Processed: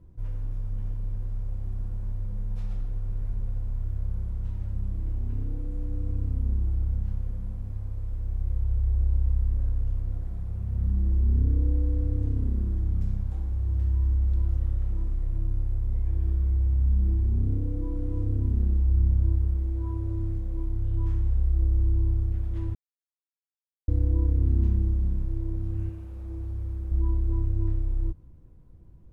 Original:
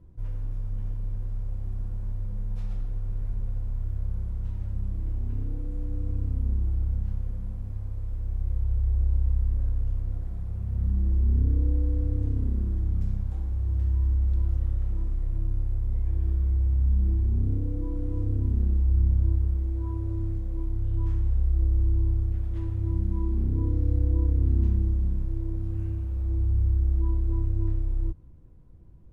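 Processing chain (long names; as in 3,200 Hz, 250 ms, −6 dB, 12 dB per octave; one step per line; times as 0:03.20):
0:22.75–0:23.88: silence
0:25.89–0:26.92: low-shelf EQ 160 Hz −11 dB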